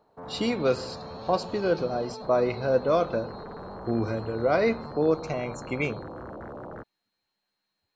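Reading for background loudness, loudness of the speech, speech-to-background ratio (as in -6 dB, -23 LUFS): -40.5 LUFS, -27.5 LUFS, 13.0 dB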